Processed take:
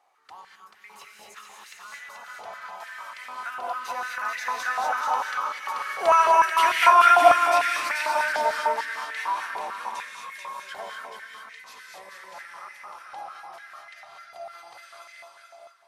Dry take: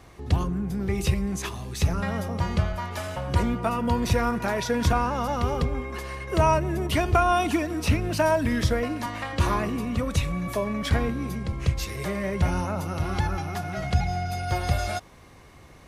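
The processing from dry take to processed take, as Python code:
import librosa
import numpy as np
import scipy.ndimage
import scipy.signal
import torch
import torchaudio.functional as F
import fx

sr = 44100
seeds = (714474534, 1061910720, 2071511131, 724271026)

p1 = fx.doppler_pass(x, sr, speed_mps=18, closest_m=15.0, pass_at_s=6.67)
p2 = p1 + fx.echo_feedback(p1, sr, ms=435, feedback_pct=23, wet_db=-4.5, dry=0)
p3 = fx.rev_gated(p2, sr, seeds[0], gate_ms=270, shape='rising', drr_db=-0.5)
y = fx.filter_held_highpass(p3, sr, hz=6.7, low_hz=770.0, high_hz=1900.0)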